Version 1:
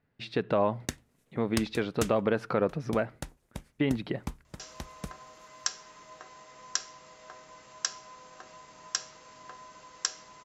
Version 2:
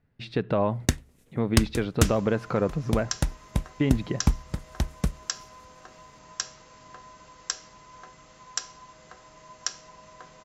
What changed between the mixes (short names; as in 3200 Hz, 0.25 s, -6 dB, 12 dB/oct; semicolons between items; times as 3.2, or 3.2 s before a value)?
first sound +8.0 dB; second sound: entry -2.55 s; master: add low shelf 150 Hz +12 dB